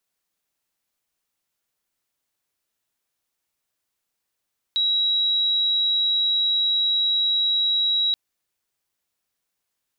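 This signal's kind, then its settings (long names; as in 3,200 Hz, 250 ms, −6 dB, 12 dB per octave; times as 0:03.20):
tone sine 3,870 Hz −18 dBFS 3.38 s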